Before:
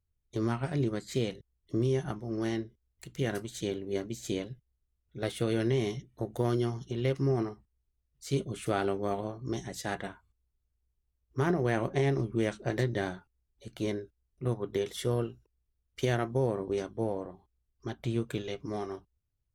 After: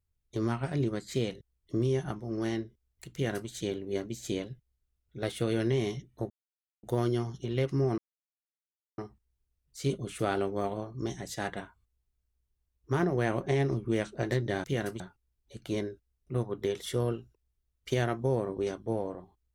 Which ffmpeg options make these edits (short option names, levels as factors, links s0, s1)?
-filter_complex "[0:a]asplit=5[s0][s1][s2][s3][s4];[s0]atrim=end=6.3,asetpts=PTS-STARTPTS,afade=t=out:st=6.296:d=0.004:c=hsin,apad=pad_dur=0.53[s5];[s1]atrim=start=6.3:end=7.45,asetpts=PTS-STARTPTS,afade=t=in:d=0.004:c=hsin,afade=t=out:st=1.146:d=0.004:c=hsin,apad=pad_dur=1[s6];[s2]atrim=start=7.45:end=13.112,asetpts=PTS-STARTPTS,afade=t=in:d=0.004:c=hsin[s7];[s3]atrim=start=3.128:end=3.492[s8];[s4]atrim=start=13.108[s9];[s5][s6][s7]concat=n=3:v=0:a=1[s10];[s10][s8]acrossfade=d=0.004:c1=hsin:c2=hsin[s11];[s11][s9]acrossfade=d=0.004:c1=hsin:c2=hsin"